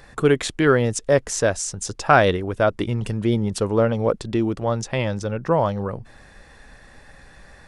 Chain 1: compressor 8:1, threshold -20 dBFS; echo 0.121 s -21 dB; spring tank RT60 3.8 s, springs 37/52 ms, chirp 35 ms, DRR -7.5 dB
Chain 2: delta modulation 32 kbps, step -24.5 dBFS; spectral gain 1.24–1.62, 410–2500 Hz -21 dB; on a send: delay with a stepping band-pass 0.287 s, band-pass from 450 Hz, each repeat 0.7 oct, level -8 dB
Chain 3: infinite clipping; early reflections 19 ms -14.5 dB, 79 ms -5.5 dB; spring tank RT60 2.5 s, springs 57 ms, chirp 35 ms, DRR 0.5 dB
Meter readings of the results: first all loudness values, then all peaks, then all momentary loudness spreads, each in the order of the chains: -18.5, -22.0, -19.0 LUFS; -3.5, -2.5, -6.5 dBFS; 14, 13, 2 LU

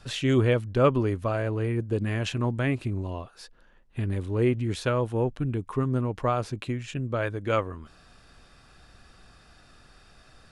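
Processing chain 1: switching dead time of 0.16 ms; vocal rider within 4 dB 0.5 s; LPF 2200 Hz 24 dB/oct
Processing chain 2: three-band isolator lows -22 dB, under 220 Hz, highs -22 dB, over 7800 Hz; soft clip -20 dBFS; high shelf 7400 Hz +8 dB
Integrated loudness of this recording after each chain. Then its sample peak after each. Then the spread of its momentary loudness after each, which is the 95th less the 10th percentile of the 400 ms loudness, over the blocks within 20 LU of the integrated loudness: -28.0, -32.0 LUFS; -12.5, -20.0 dBFS; 4, 13 LU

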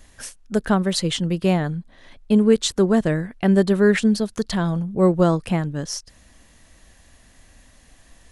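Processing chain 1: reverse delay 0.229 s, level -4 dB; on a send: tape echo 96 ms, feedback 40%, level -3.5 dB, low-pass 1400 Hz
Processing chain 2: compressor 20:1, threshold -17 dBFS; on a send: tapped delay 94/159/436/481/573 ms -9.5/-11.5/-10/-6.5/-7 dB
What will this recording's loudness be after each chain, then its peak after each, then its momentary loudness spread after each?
-17.5, -22.5 LUFS; -1.0, -7.0 dBFS; 13, 9 LU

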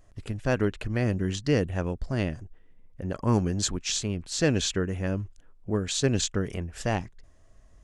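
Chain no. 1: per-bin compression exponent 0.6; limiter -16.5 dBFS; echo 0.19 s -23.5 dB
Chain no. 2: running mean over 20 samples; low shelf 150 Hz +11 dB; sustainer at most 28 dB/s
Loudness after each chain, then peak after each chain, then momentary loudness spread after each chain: -28.5, -24.0 LUFS; -16.0, -7.0 dBFS; 12, 10 LU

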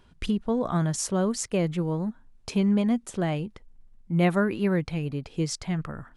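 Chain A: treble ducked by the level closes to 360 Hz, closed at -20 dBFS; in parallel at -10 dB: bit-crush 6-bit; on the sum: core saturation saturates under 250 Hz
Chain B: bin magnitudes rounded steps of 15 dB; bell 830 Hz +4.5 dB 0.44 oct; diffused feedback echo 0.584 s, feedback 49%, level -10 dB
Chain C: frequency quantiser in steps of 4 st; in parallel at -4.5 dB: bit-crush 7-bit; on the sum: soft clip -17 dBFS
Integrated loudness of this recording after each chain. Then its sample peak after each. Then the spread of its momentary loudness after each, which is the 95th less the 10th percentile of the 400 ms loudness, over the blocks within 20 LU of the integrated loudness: -26.5, -27.0, -23.5 LUFS; -12.5, -11.5, -17.0 dBFS; 7, 8, 9 LU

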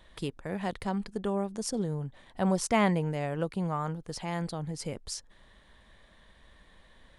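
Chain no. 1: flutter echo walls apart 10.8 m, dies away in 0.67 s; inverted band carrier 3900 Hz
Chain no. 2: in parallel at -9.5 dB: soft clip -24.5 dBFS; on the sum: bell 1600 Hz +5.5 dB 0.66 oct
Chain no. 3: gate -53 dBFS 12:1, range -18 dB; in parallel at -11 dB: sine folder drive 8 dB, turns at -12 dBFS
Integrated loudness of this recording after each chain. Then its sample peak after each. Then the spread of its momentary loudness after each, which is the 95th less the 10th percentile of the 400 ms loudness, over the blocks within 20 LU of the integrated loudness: -27.0, -30.0, -27.0 LUFS; -9.0, -11.0, -13.5 dBFS; 13, 12, 10 LU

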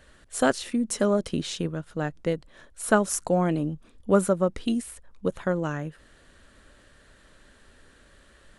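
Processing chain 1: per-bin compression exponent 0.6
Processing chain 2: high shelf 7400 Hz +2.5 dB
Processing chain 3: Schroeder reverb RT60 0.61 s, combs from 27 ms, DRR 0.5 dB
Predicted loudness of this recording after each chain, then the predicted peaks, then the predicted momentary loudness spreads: -24.0, -26.5, -23.5 LUFS; -3.5, -6.0, -4.5 dBFS; 18, 11, 12 LU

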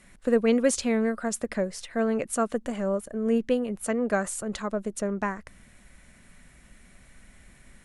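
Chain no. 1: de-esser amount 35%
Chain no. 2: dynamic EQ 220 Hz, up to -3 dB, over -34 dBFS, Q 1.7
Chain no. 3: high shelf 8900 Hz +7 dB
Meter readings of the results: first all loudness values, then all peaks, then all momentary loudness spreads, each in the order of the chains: -27.5, -28.5, -27.0 LUFS; -11.0, -12.0, -10.5 dBFS; 8, 8, 8 LU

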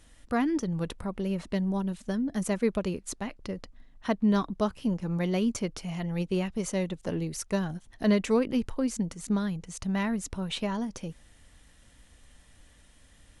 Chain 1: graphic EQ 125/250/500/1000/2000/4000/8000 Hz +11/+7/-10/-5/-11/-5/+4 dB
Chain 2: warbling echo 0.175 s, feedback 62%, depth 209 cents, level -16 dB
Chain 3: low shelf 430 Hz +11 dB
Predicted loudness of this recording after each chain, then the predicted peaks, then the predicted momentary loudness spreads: -24.5, -30.0, -22.5 LUFS; -8.5, -13.0, -6.5 dBFS; 10, 10, 9 LU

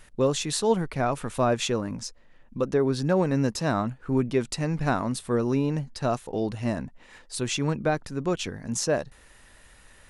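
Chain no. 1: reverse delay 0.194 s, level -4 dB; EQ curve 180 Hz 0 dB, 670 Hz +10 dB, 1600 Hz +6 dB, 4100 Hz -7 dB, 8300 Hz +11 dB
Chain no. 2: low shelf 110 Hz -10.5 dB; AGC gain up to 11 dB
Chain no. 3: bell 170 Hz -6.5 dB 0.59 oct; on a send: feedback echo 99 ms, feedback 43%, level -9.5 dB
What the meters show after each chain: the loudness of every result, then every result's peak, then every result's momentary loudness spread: -20.0, -18.5, -27.5 LUFS; -3.5, -2.5, -11.5 dBFS; 10, 8, 10 LU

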